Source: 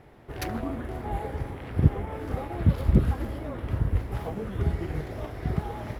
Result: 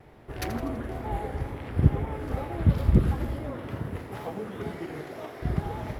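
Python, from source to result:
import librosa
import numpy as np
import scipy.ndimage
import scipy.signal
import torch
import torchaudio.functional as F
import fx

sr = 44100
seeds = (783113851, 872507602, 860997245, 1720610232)

p1 = fx.highpass(x, sr, hz=fx.line((3.51, 140.0), (5.41, 290.0)), slope=12, at=(3.51, 5.41), fade=0.02)
p2 = p1 + fx.echo_feedback(p1, sr, ms=83, feedback_pct=55, wet_db=-12.0, dry=0)
y = fx.wow_flutter(p2, sr, seeds[0], rate_hz=2.1, depth_cents=49.0)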